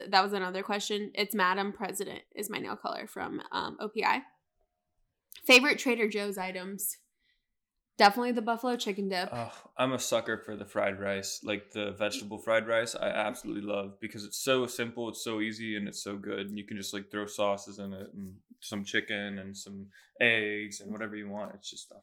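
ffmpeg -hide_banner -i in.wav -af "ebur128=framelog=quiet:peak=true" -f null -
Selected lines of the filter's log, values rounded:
Integrated loudness:
  I:         -30.9 LUFS
  Threshold: -41.3 LUFS
Loudness range:
  LRA:         7.9 LU
  Threshold: -51.6 LUFS
  LRA low:   -35.8 LUFS
  LRA high:  -27.9 LUFS
True peak:
  Peak:      -10.0 dBFS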